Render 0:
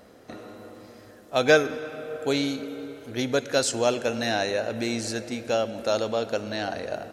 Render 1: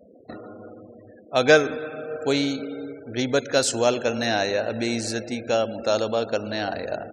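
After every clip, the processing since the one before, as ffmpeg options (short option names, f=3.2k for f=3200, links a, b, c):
-af "afftfilt=real='re*gte(hypot(re,im),0.00794)':imag='im*gte(hypot(re,im),0.00794)':win_size=1024:overlap=0.75,volume=2.5dB"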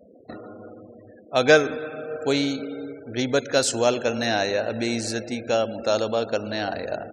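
-af anull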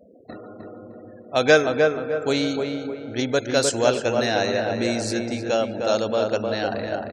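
-filter_complex "[0:a]asplit=2[a][b];[b]adelay=306,lowpass=f=1.7k:p=1,volume=-3.5dB,asplit=2[c][d];[d]adelay=306,lowpass=f=1.7k:p=1,volume=0.41,asplit=2[e][f];[f]adelay=306,lowpass=f=1.7k:p=1,volume=0.41,asplit=2[g][h];[h]adelay=306,lowpass=f=1.7k:p=1,volume=0.41,asplit=2[i][j];[j]adelay=306,lowpass=f=1.7k:p=1,volume=0.41[k];[a][c][e][g][i][k]amix=inputs=6:normalize=0"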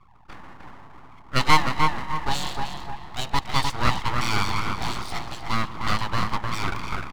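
-af "highpass=f=350:w=0.5412,highpass=f=350:w=1.3066,equalizer=f=400:t=q:w=4:g=6,equalizer=f=780:t=q:w=4:g=6,equalizer=f=1.1k:t=q:w=4:g=6,equalizer=f=1.7k:t=q:w=4:g=6,equalizer=f=2.4k:t=q:w=4:g=-7,equalizer=f=3.5k:t=q:w=4:g=8,lowpass=f=4.4k:w=0.5412,lowpass=f=4.4k:w=1.3066,aeval=exprs='abs(val(0))':c=same,volume=-2dB"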